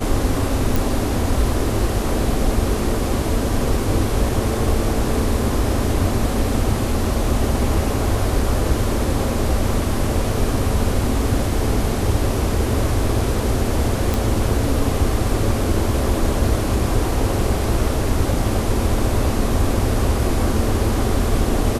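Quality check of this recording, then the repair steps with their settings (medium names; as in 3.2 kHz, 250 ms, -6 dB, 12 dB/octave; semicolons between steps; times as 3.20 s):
0.76 s: pop
14.14 s: pop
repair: de-click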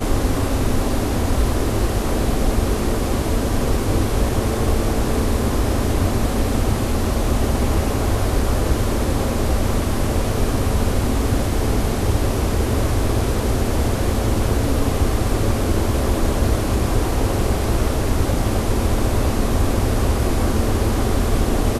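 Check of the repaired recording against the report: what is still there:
nothing left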